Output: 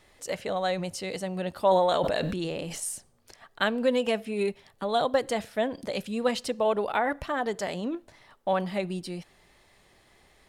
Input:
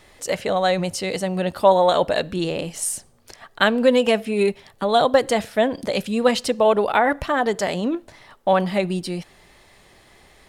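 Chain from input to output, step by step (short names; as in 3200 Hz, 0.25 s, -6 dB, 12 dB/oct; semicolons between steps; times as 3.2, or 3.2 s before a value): 1.61–2.8 sustainer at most 23 dB/s; gain -8.5 dB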